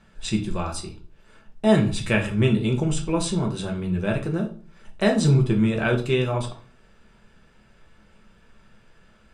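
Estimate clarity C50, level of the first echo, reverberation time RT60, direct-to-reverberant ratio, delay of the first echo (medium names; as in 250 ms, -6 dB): 11.0 dB, no echo, 0.45 s, 1.0 dB, no echo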